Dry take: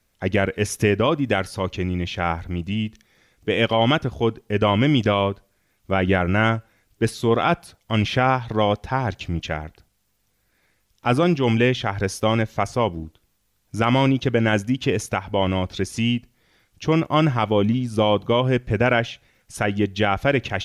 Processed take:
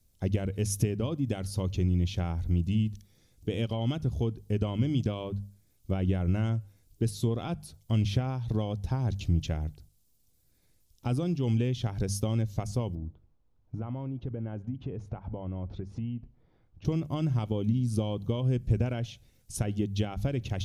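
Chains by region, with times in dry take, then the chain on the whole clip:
12.95–16.85 s: compression, threshold -32 dBFS + low-pass 1.6 kHz + peaking EQ 880 Hz +6 dB 1.8 oct
whole clip: hum notches 50/100/150/200 Hz; compression, threshold -23 dBFS; FFT filter 100 Hz 0 dB, 1.8 kHz -23 dB, 4.1 kHz -10 dB, 10 kHz -5 dB; trim +5 dB

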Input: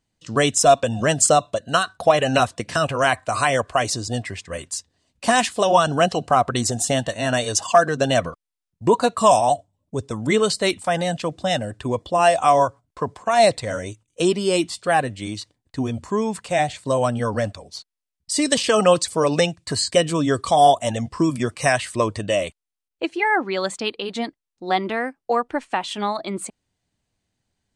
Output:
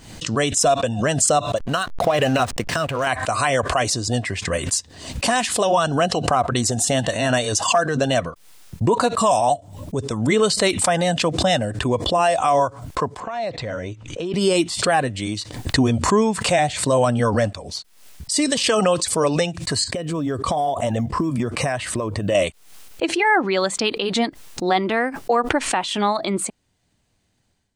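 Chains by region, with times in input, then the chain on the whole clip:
1.57–3.07 s: compression 3:1, threshold -19 dBFS + hysteresis with a dead band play -34 dBFS
13.20–14.34 s: distance through air 160 m + compression 3:1, threshold -35 dBFS
19.84–22.35 s: treble shelf 2 kHz -11 dB + compression 12:1, threshold -26 dBFS + short-mantissa float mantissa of 6-bit
whole clip: level rider; loudness maximiser +4.5 dB; swell ahead of each attack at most 75 dB/s; trim -7.5 dB

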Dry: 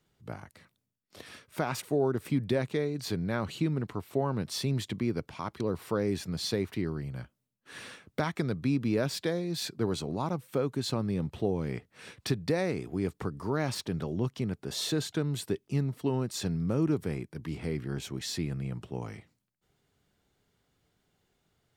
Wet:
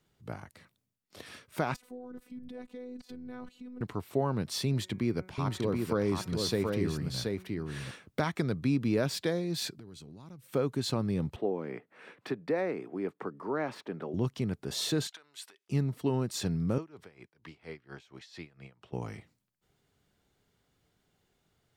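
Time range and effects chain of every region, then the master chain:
1.74–3.81 s: tilt shelf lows +4 dB, about 920 Hz + level held to a coarse grid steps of 20 dB + robot voice 249 Hz
4.65–7.91 s: de-hum 185.3 Hz, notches 13 + delay 728 ms -3.5 dB
9.75–10.46 s: peaking EQ 740 Hz -12 dB 1.9 oct + compression 10:1, threshold -45 dBFS
11.36–14.14 s: high-pass 120 Hz 24 dB/octave + three-band isolator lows -16 dB, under 240 Hz, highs -18 dB, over 2.5 kHz + upward compressor, threshold -52 dBFS
15.07–15.69 s: treble shelf 11 kHz -11 dB + compression 10:1, threshold -37 dBFS + high-pass 1.2 kHz
16.78–18.93 s: three-band isolator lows -14 dB, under 510 Hz, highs -15 dB, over 5.8 kHz + logarithmic tremolo 4.3 Hz, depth 20 dB
whole clip: none

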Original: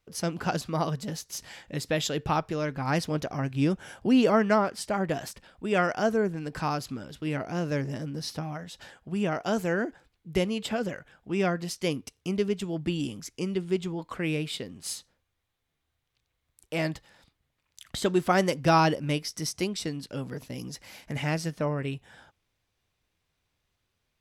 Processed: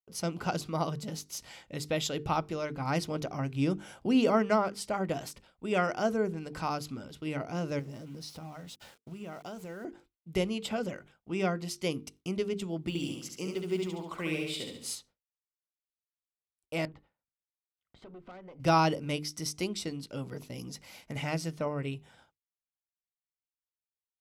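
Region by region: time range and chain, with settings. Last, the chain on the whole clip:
7.79–9.85 s: compression 4:1, threshold -37 dBFS + small samples zeroed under -50.5 dBFS
12.88–14.95 s: block-companded coder 7-bit + bass shelf 210 Hz -6.5 dB + feedback delay 70 ms, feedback 47%, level -3.5 dB
16.85–18.60 s: low-pass 1.8 kHz + compression 4:1, threshold -39 dBFS + valve stage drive 39 dB, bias 0.6
whole clip: hum notches 50/100/150/200/250/300/350/400/450 Hz; expander -48 dBFS; band-stop 1.7 kHz, Q 6.2; trim -3 dB

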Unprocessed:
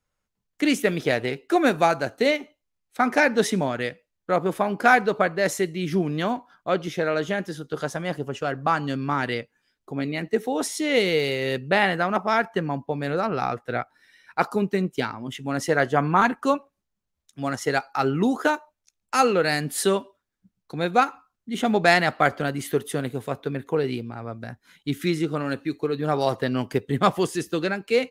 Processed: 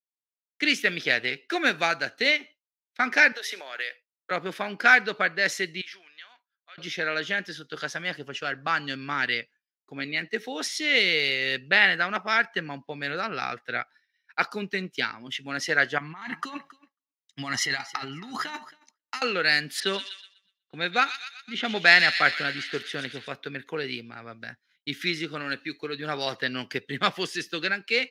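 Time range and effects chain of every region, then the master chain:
3.32–4.31 s: high-pass 440 Hz 24 dB/octave + peaking EQ 12 kHz +13.5 dB 0.25 oct + compression 12:1, threshold -28 dBFS
5.81–6.78 s: high-pass 1.3 kHz + treble shelf 6.9 kHz -8.5 dB + compression, threshold -41 dBFS
15.98–19.22 s: comb 1 ms, depth 62% + compressor with a negative ratio -29 dBFS + feedback delay 272 ms, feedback 16%, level -18 dB
19.80–23.28 s: level-controlled noise filter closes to 1.3 kHz, open at -19 dBFS + feedback echo behind a high-pass 123 ms, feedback 62%, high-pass 2.9 kHz, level -4 dB
whole clip: expander -40 dBFS; high-pass 140 Hz; high-order bell 2.9 kHz +14 dB 2.3 oct; trim -9 dB

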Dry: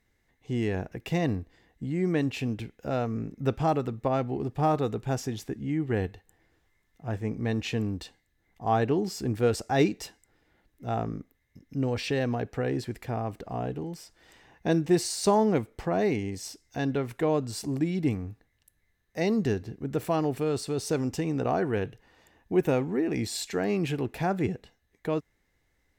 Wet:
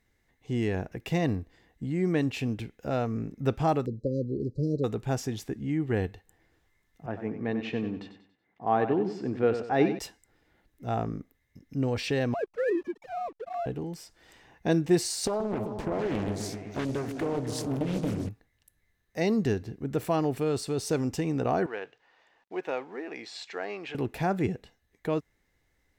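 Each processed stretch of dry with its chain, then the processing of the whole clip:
3.86–4.84 s: brick-wall FIR band-stop 590–3900 Hz + distance through air 100 m
7.06–9.99 s: band-pass 180–2400 Hz + feedback delay 94 ms, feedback 38%, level -9.5 dB
12.34–13.66 s: formants replaced by sine waves + hysteresis with a dead band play -43.5 dBFS
15.27–18.29 s: compression 10:1, threshold -25 dBFS + delay with an opening low-pass 130 ms, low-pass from 400 Hz, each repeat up 2 oct, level -6 dB + loudspeaker Doppler distortion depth 0.99 ms
21.66–23.95 s: high-pass 640 Hz + companded quantiser 6-bit + distance through air 170 m
whole clip: none

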